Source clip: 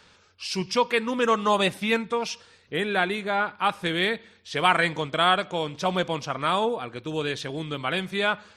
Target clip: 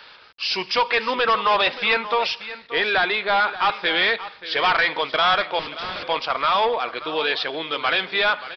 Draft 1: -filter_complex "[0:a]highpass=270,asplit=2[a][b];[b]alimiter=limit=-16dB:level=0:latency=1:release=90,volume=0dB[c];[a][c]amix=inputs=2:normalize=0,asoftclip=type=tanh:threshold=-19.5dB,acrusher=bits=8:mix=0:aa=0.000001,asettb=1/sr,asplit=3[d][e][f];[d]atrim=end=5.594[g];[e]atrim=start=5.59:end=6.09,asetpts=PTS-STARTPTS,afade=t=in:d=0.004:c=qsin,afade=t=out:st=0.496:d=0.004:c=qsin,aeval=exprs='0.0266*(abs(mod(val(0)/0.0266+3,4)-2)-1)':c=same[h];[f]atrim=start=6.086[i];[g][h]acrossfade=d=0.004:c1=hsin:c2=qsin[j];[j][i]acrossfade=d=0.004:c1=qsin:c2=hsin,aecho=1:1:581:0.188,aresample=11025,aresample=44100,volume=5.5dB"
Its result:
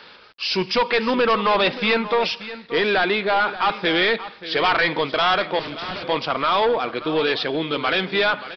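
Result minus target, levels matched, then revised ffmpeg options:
250 Hz band +9.0 dB
-filter_complex "[0:a]highpass=620,asplit=2[a][b];[b]alimiter=limit=-16dB:level=0:latency=1:release=90,volume=0dB[c];[a][c]amix=inputs=2:normalize=0,asoftclip=type=tanh:threshold=-19.5dB,acrusher=bits=8:mix=0:aa=0.000001,asettb=1/sr,asplit=3[d][e][f];[d]atrim=end=5.594[g];[e]atrim=start=5.59:end=6.09,asetpts=PTS-STARTPTS,afade=t=in:d=0.004:c=qsin,afade=t=out:st=0.496:d=0.004:c=qsin,aeval=exprs='0.0266*(abs(mod(val(0)/0.0266+3,4)-2)-1)':c=same[h];[f]atrim=start=6.086[i];[g][h]acrossfade=d=0.004:c1=hsin:c2=qsin[j];[j][i]acrossfade=d=0.004:c1=qsin:c2=hsin,aecho=1:1:581:0.188,aresample=11025,aresample=44100,volume=5.5dB"

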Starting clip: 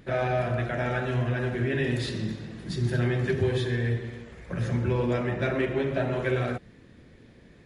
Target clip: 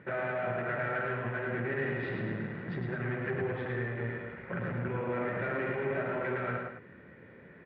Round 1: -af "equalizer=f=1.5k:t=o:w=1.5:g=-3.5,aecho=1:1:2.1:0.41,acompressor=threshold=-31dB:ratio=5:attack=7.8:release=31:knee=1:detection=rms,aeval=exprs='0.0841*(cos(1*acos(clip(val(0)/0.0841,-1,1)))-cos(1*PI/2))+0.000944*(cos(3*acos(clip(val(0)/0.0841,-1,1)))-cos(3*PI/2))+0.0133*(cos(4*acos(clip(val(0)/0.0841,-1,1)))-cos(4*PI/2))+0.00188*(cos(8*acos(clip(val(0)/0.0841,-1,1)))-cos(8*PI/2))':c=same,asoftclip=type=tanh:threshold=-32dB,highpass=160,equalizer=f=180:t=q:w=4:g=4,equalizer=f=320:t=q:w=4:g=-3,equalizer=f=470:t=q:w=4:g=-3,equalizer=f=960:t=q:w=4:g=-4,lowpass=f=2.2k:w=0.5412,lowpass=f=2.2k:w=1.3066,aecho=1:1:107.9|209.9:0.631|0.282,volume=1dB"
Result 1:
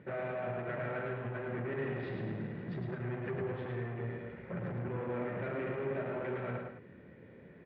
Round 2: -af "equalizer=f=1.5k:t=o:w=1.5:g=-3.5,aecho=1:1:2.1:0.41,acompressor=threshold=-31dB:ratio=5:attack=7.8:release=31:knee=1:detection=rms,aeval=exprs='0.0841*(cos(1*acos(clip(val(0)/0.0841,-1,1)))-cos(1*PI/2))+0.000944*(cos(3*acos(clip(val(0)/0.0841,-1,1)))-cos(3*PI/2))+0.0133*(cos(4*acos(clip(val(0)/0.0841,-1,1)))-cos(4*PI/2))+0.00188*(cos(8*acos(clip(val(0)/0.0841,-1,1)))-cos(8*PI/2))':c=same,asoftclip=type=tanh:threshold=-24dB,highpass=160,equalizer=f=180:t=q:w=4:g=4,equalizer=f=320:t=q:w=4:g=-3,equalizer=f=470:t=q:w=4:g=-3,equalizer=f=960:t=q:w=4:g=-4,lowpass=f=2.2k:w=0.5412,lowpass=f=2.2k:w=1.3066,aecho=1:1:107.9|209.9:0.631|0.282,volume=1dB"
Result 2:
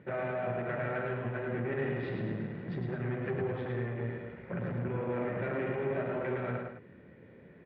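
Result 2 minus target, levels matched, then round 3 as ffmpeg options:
2000 Hz band -4.5 dB
-af "equalizer=f=1.5k:t=o:w=1.5:g=5,aecho=1:1:2.1:0.41,acompressor=threshold=-31dB:ratio=5:attack=7.8:release=31:knee=1:detection=rms,aeval=exprs='0.0841*(cos(1*acos(clip(val(0)/0.0841,-1,1)))-cos(1*PI/2))+0.000944*(cos(3*acos(clip(val(0)/0.0841,-1,1)))-cos(3*PI/2))+0.0133*(cos(4*acos(clip(val(0)/0.0841,-1,1)))-cos(4*PI/2))+0.00188*(cos(8*acos(clip(val(0)/0.0841,-1,1)))-cos(8*PI/2))':c=same,asoftclip=type=tanh:threshold=-24dB,highpass=160,equalizer=f=180:t=q:w=4:g=4,equalizer=f=320:t=q:w=4:g=-3,equalizer=f=470:t=q:w=4:g=-3,equalizer=f=960:t=q:w=4:g=-4,lowpass=f=2.2k:w=0.5412,lowpass=f=2.2k:w=1.3066,aecho=1:1:107.9|209.9:0.631|0.282,volume=1dB"

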